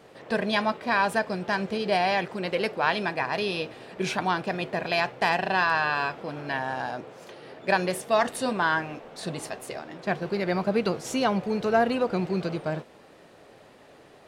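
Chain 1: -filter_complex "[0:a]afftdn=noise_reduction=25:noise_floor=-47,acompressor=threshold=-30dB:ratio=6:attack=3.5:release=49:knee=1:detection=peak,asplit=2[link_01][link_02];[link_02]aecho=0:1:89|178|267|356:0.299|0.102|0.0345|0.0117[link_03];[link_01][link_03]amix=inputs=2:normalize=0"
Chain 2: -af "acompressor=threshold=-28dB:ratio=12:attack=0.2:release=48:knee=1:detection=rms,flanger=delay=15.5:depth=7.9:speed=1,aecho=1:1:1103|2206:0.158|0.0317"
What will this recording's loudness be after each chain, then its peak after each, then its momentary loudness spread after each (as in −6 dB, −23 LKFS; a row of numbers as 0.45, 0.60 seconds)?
−33.5, −38.5 LKFS; −18.5, −26.0 dBFS; 5, 8 LU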